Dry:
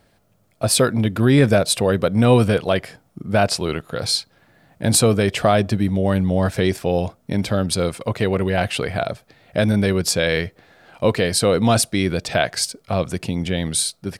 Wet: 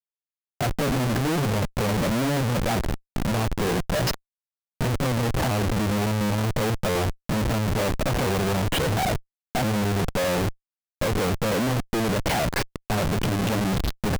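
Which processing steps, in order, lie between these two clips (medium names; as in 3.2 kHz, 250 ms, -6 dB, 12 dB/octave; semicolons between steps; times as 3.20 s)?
sawtooth pitch modulation +3.5 st, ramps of 1377 ms; low-pass that closes with the level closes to 410 Hz, closed at -15 dBFS; Schmitt trigger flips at -35.5 dBFS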